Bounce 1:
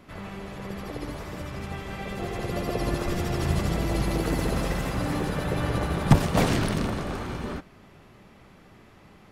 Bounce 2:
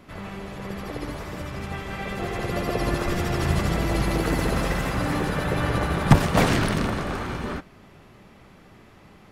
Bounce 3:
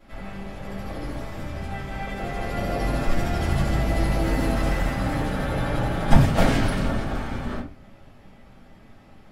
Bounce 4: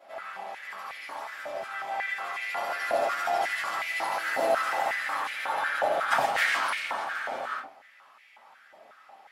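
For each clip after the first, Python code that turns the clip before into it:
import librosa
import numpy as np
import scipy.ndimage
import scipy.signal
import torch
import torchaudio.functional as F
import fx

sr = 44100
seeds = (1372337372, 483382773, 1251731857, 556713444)

y1 = fx.dynamic_eq(x, sr, hz=1600.0, q=0.84, threshold_db=-42.0, ratio=4.0, max_db=4)
y1 = y1 * 10.0 ** (2.0 / 20.0)
y2 = fx.room_shoebox(y1, sr, seeds[0], volume_m3=120.0, walls='furnished', distance_m=4.0)
y2 = y2 * 10.0 ** (-11.5 / 20.0)
y3 = fx.filter_held_highpass(y2, sr, hz=5.5, low_hz=650.0, high_hz=2200.0)
y3 = y3 * 10.0 ** (-2.5 / 20.0)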